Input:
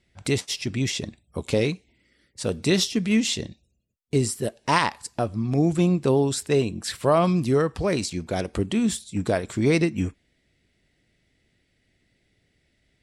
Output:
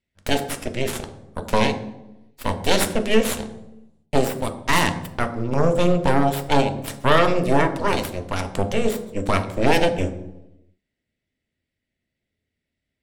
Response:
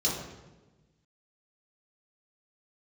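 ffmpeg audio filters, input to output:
-filter_complex "[0:a]aeval=exprs='0.501*(cos(1*acos(clip(val(0)/0.501,-1,1)))-cos(1*PI/2))+0.0891*(cos(3*acos(clip(val(0)/0.501,-1,1)))-cos(3*PI/2))+0.224*(cos(6*acos(clip(val(0)/0.501,-1,1)))-cos(6*PI/2))+0.0178*(cos(7*acos(clip(val(0)/0.501,-1,1)))-cos(7*PI/2))':channel_layout=same,asplit=2[link_01][link_02];[1:a]atrim=start_sample=2205,asetrate=61740,aresample=44100[link_03];[link_02][link_03]afir=irnorm=-1:irlink=0,volume=-12.5dB[link_04];[link_01][link_04]amix=inputs=2:normalize=0,volume=-1dB"

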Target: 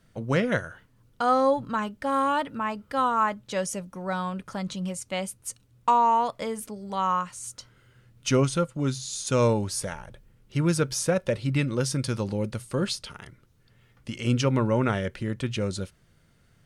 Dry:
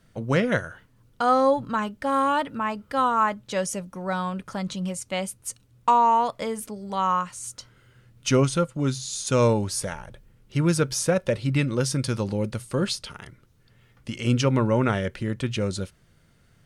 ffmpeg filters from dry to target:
ffmpeg -i in.wav -af "volume=-2dB" out.wav

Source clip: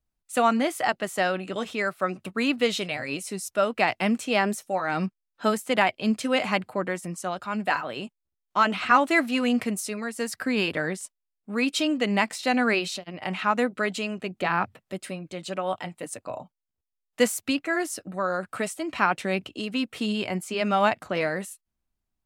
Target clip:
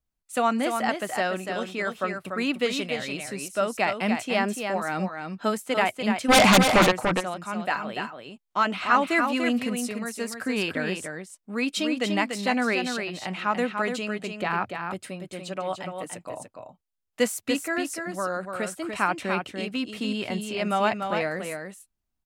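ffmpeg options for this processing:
ffmpeg -i in.wav -filter_complex "[0:a]asplit=3[link_01][link_02][link_03];[link_01]afade=type=out:start_time=6.28:duration=0.02[link_04];[link_02]aeval=exprs='0.316*sin(PI/2*5.01*val(0)/0.316)':channel_layout=same,afade=type=in:start_time=6.28:duration=0.02,afade=type=out:start_time=6.9:duration=0.02[link_05];[link_03]afade=type=in:start_time=6.9:duration=0.02[link_06];[link_04][link_05][link_06]amix=inputs=3:normalize=0,asplit=2[link_07][link_08];[link_08]aecho=0:1:291:0.501[link_09];[link_07][link_09]amix=inputs=2:normalize=0,volume=-2dB" out.wav

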